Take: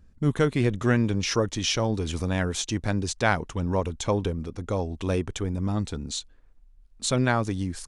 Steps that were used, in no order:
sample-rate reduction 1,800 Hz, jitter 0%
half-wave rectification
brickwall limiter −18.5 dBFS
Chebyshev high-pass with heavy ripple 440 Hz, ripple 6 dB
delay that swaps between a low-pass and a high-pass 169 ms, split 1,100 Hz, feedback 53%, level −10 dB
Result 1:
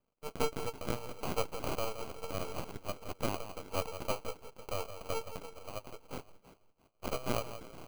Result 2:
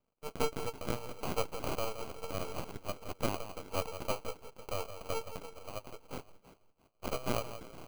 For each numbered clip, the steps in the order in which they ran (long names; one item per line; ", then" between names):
Chebyshev high-pass with heavy ripple, then brickwall limiter, then half-wave rectification, then delay that swaps between a low-pass and a high-pass, then sample-rate reduction
Chebyshev high-pass with heavy ripple, then half-wave rectification, then brickwall limiter, then delay that swaps between a low-pass and a high-pass, then sample-rate reduction